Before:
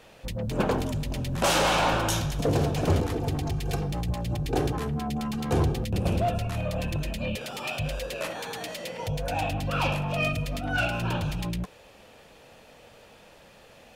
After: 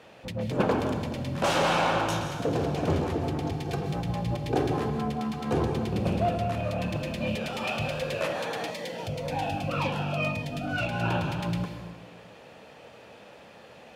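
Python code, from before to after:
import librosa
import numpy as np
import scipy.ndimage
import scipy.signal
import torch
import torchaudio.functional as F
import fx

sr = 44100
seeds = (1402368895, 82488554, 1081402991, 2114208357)

y = fx.lowpass(x, sr, hz=3200.0, slope=6)
y = fx.rider(y, sr, range_db=3, speed_s=2.0)
y = scipy.signal.sosfilt(scipy.signal.butter(2, 100.0, 'highpass', fs=sr, output='sos'), y)
y = fx.hum_notches(y, sr, base_hz=50, count=3)
y = fx.rev_plate(y, sr, seeds[0], rt60_s=1.4, hf_ratio=0.75, predelay_ms=115, drr_db=5.5)
y = fx.notch_cascade(y, sr, direction='falling', hz=1.9, at=(8.7, 11.01))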